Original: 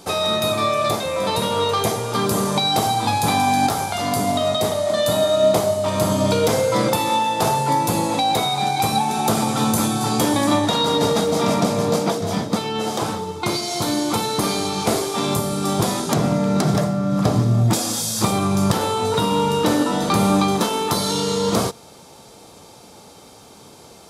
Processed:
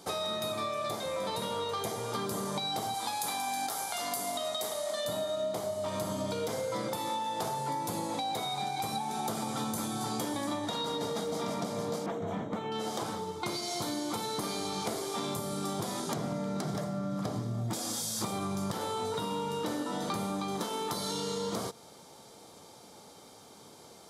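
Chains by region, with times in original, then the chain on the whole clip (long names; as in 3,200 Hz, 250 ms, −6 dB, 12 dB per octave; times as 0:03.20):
0:02.94–0:05.05: high-pass filter 610 Hz 6 dB per octave + high-shelf EQ 7,300 Hz +9 dB
0:12.06–0:12.72: moving average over 9 samples + hard clipping −17 dBFS
whole clip: high-pass filter 130 Hz 6 dB per octave; notch filter 2,600 Hz, Q 11; downward compressor, threshold −23 dBFS; level −8 dB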